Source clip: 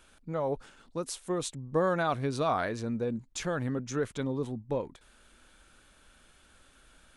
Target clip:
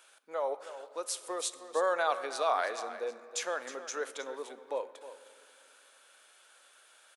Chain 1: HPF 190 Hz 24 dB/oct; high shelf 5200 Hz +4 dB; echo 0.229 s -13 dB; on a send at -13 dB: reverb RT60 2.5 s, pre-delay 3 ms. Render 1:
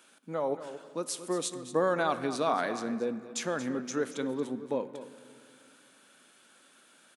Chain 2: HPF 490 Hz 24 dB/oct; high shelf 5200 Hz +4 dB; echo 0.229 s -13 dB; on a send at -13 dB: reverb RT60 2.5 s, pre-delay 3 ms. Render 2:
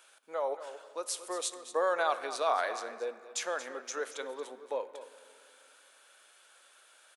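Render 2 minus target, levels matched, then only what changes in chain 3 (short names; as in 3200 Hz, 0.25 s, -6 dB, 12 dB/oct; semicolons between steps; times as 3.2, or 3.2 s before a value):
echo 85 ms early
change: echo 0.314 s -13 dB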